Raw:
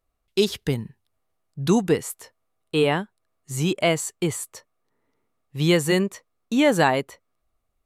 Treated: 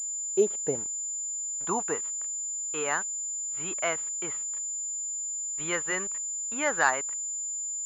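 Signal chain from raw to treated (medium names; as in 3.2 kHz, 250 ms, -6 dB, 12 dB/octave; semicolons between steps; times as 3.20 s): band-pass sweep 540 Hz -> 1.4 kHz, 0.60–2.29 s; small samples zeroed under -48 dBFS; class-D stage that switches slowly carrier 7.1 kHz; trim +3 dB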